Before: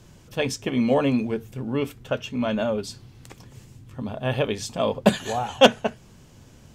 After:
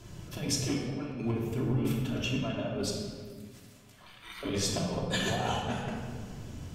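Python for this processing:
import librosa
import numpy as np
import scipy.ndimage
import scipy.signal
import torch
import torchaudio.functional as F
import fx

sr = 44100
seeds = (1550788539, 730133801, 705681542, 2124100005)

y = fx.spec_gate(x, sr, threshold_db=-30, keep='weak', at=(2.9, 4.43))
y = fx.over_compress(y, sr, threshold_db=-29.0, ratio=-0.5)
y = fx.room_shoebox(y, sr, seeds[0], volume_m3=2200.0, walls='mixed', distance_m=3.0)
y = F.gain(torch.from_numpy(y), -7.5).numpy()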